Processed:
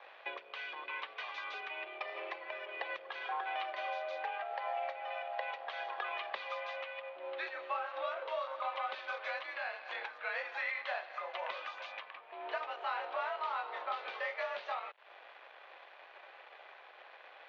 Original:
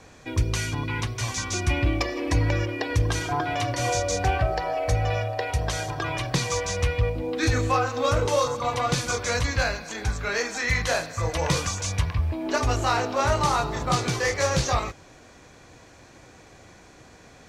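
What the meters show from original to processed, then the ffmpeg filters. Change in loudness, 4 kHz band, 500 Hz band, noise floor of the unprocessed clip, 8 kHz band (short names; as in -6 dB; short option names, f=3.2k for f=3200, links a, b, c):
-14.5 dB, -15.5 dB, -15.0 dB, -50 dBFS, under -40 dB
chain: -af "acompressor=threshold=-37dB:ratio=5,aeval=exprs='sgn(val(0))*max(abs(val(0))-0.00211,0)':c=same,highpass=f=520:t=q:w=0.5412,highpass=f=520:t=q:w=1.307,lowpass=f=3.4k:t=q:w=0.5176,lowpass=f=3.4k:t=q:w=0.7071,lowpass=f=3.4k:t=q:w=1.932,afreqshift=52,volume=3.5dB"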